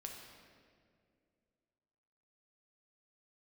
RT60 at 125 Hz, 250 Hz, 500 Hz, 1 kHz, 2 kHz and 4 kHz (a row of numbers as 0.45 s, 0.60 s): 2.7 s, 2.8 s, 2.6 s, 1.9 s, 1.8 s, 1.4 s